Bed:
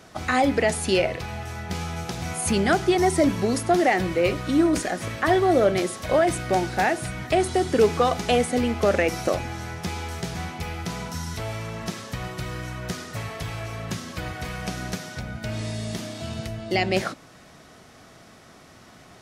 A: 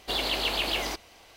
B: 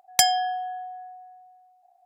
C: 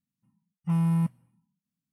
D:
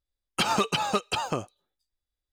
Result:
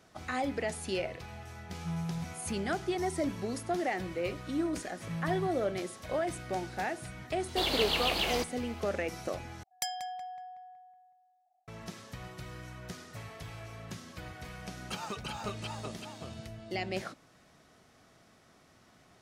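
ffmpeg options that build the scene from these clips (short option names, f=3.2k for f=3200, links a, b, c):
-filter_complex "[3:a]asplit=2[a][b];[0:a]volume=-12.5dB[c];[2:a]asplit=2[d][e];[e]adelay=186,lowpass=f=2.5k:p=1,volume=-7.5dB,asplit=2[f][g];[g]adelay=186,lowpass=f=2.5k:p=1,volume=0.54,asplit=2[h][i];[i]adelay=186,lowpass=f=2.5k:p=1,volume=0.54,asplit=2[j][k];[k]adelay=186,lowpass=f=2.5k:p=1,volume=0.54,asplit=2[l][m];[m]adelay=186,lowpass=f=2.5k:p=1,volume=0.54,asplit=2[n][o];[o]adelay=186,lowpass=f=2.5k:p=1,volume=0.54,asplit=2[p][q];[q]adelay=186,lowpass=f=2.5k:p=1,volume=0.54[r];[d][f][h][j][l][n][p][r]amix=inputs=8:normalize=0[s];[4:a]aecho=1:1:376:0.596[t];[c]asplit=2[u][v];[u]atrim=end=9.634[w];[s]atrim=end=2.05,asetpts=PTS-STARTPTS,volume=-16.5dB[x];[v]atrim=start=11.676[y];[a]atrim=end=1.92,asetpts=PTS-STARTPTS,volume=-12dB,afade=t=in:d=0.004:c=hsin,afade=t=out:st=1.916:d=0.004:c=hsin,adelay=1180[z];[b]atrim=end=1.92,asetpts=PTS-STARTPTS,volume=-13dB,afade=t=in:d=0.004:c=hsin,afade=t=out:st=1.916:d=0.004:c=hsin,adelay=194481S[aa];[1:a]atrim=end=1.36,asetpts=PTS-STARTPTS,volume=-2.5dB,afade=t=in:d=0.004:c=hsin,afade=t=out:st=1.356:d=0.004:c=hsin,adelay=7480[ab];[t]atrim=end=2.32,asetpts=PTS-STARTPTS,volume=-15dB,afade=t=in:d=0.004:c=hsin,afade=t=out:st=2.316:d=0.004:c=hsin,adelay=14520[ac];[w][x]acrossfade=d=0.004:c1=hsin:c2=hsin[ad];[ad][y]acrossfade=d=0.004:c1=hsin:c2=hsin[ae];[ae][z][aa][ab][ac]amix=inputs=5:normalize=0"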